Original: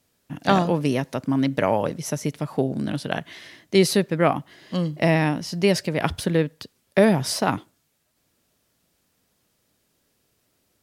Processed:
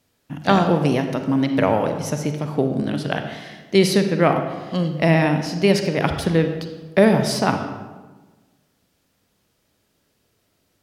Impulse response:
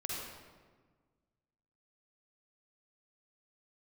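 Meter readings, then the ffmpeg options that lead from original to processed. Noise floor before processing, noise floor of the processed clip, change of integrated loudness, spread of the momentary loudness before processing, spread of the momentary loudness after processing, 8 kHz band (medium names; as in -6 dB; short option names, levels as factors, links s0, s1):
-70 dBFS, -68 dBFS, +3.0 dB, 11 LU, 10 LU, -0.5 dB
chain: -filter_complex "[0:a]asplit=2[s0][s1];[1:a]atrim=start_sample=2205,asetrate=52920,aresample=44100,lowpass=6700[s2];[s1][s2]afir=irnorm=-1:irlink=0,volume=0.75[s3];[s0][s3]amix=inputs=2:normalize=0,volume=0.891"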